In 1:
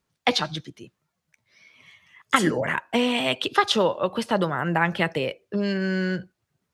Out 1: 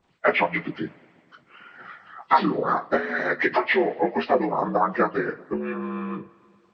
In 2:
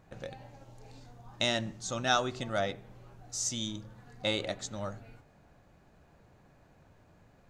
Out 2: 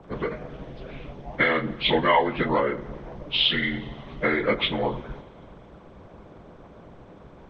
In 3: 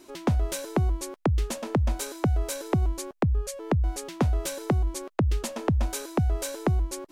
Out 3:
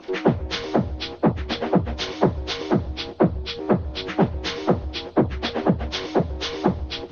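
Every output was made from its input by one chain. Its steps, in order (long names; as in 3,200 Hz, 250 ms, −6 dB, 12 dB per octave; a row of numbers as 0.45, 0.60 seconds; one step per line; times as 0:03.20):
partials spread apart or drawn together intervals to 79%
high-shelf EQ 3,700 Hz −11.5 dB
downward compressor 3 to 1, threshold −37 dBFS
coupled-rooms reverb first 0.26 s, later 2.2 s, from −22 dB, DRR 4 dB
harmonic and percussive parts rebalanced harmonic −14 dB
loudness normalisation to −24 LKFS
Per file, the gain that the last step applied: +17.5, +22.0, +19.5 decibels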